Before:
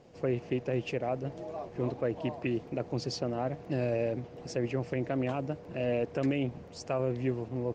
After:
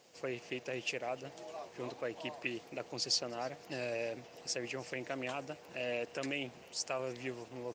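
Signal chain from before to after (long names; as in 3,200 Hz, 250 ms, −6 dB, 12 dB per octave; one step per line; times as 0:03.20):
spectral tilt +4.5 dB per octave
on a send: echo with shifted repeats 305 ms, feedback 62%, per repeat +98 Hz, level −24 dB
on the sum: level −3.5 dB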